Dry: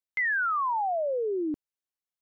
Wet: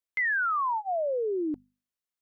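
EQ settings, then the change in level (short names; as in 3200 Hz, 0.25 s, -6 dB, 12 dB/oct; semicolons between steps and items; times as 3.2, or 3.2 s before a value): Butterworth band-stop 810 Hz, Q 7.6; notches 50/100/150/200/250 Hz; 0.0 dB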